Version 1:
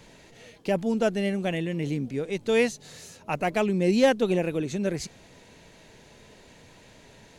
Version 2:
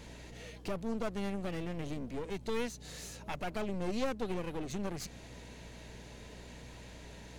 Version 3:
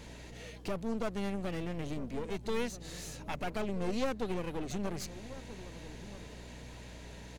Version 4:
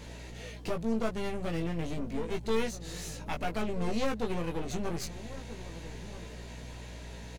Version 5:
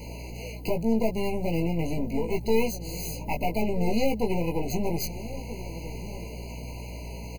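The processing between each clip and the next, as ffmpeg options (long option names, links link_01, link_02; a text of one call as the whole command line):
ffmpeg -i in.wav -af "acompressor=threshold=-36dB:ratio=2,aeval=exprs='clip(val(0),-1,0.00531)':channel_layout=same,aeval=exprs='val(0)+0.00282*(sin(2*PI*60*n/s)+sin(2*PI*2*60*n/s)/2+sin(2*PI*3*60*n/s)/3+sin(2*PI*4*60*n/s)/4+sin(2*PI*5*60*n/s)/5)':channel_layout=same" out.wav
ffmpeg -i in.wav -filter_complex "[0:a]asplit=2[link_01][link_02];[link_02]adelay=1283,volume=-14dB,highshelf=frequency=4000:gain=-28.9[link_03];[link_01][link_03]amix=inputs=2:normalize=0,volume=1dB" out.wav
ffmpeg -i in.wav -filter_complex "[0:a]asplit=2[link_01][link_02];[link_02]adelay=18,volume=-4dB[link_03];[link_01][link_03]amix=inputs=2:normalize=0,volume=1.5dB" out.wav
ffmpeg -i in.wav -filter_complex "[0:a]acrossover=split=1100[link_01][link_02];[link_02]aexciter=amount=3.7:drive=9.1:freq=12000[link_03];[link_01][link_03]amix=inputs=2:normalize=0,afftfilt=real='re*eq(mod(floor(b*sr/1024/1000),2),0)':imag='im*eq(mod(floor(b*sr/1024/1000),2),0)':win_size=1024:overlap=0.75,volume=6.5dB" out.wav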